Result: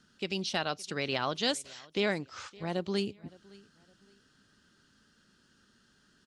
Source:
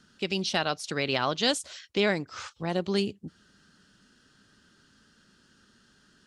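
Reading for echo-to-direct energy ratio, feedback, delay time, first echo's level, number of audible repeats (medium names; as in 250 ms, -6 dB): -23.0 dB, 31%, 564 ms, -23.5 dB, 2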